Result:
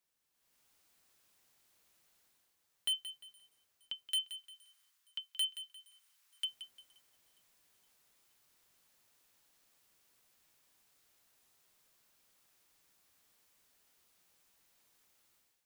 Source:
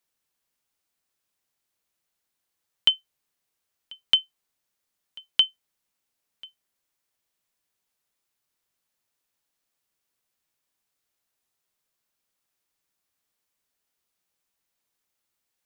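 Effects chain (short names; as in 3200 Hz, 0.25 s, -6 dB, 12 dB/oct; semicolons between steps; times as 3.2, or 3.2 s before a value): 4.07–6.45 HPF 1000 Hz 24 dB/oct; AGC gain up to 13 dB; hard clip -26.5 dBFS, distortion 0 dB; thin delay 0.467 s, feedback 55%, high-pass 5300 Hz, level -24 dB; lo-fi delay 0.175 s, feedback 35%, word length 11-bit, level -12 dB; gain -4 dB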